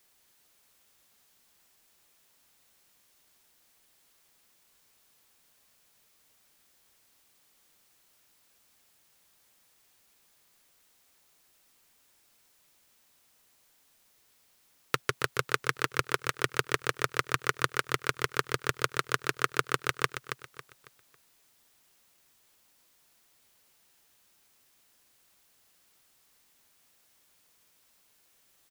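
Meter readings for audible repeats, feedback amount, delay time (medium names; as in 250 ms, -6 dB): 3, 33%, 275 ms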